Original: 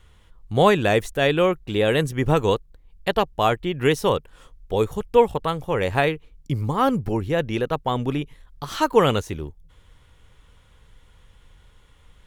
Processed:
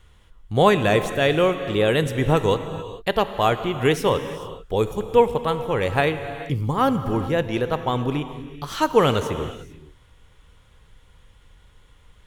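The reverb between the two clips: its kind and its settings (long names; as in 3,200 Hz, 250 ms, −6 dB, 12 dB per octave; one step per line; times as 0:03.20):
reverb whose tail is shaped and stops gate 470 ms flat, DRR 9.5 dB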